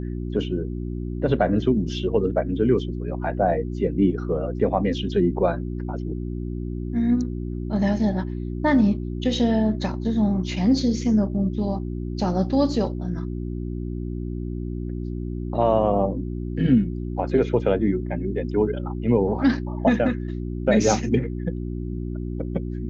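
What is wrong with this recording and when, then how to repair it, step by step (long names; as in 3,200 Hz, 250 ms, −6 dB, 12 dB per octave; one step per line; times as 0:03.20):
mains hum 60 Hz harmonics 6 −29 dBFS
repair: hum removal 60 Hz, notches 6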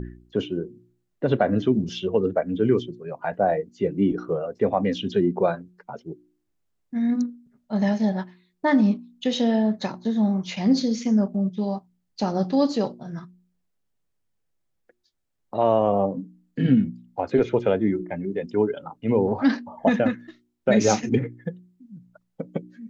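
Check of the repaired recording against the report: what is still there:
none of them is left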